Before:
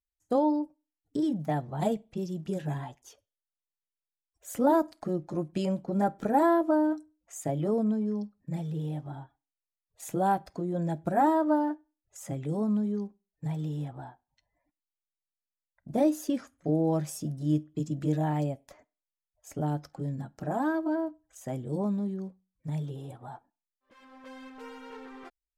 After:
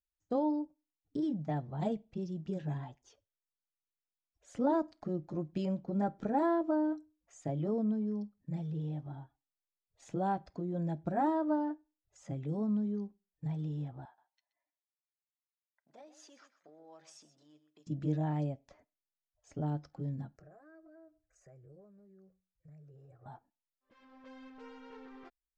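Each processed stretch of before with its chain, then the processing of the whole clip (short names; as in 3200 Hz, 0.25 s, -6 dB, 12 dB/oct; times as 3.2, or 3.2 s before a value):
14.05–17.87 compressor 4:1, threshold -36 dBFS + HPF 850 Hz + echo 0.127 s -13.5 dB
20.36–23.26 compressor 4:1, threshold -47 dBFS + fixed phaser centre 910 Hz, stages 6
whole clip: LPF 6200 Hz 24 dB/oct; low shelf 310 Hz +6 dB; gain -8.5 dB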